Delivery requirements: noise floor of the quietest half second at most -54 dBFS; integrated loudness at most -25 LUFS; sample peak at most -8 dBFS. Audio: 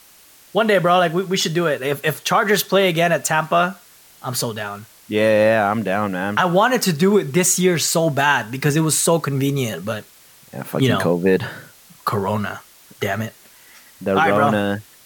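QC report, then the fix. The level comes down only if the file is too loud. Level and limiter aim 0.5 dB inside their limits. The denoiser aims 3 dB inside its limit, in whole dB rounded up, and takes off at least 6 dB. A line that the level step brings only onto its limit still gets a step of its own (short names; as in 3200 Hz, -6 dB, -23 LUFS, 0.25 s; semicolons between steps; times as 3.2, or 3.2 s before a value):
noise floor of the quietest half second -48 dBFS: fail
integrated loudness -18.5 LUFS: fail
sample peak -5.0 dBFS: fail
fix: gain -7 dB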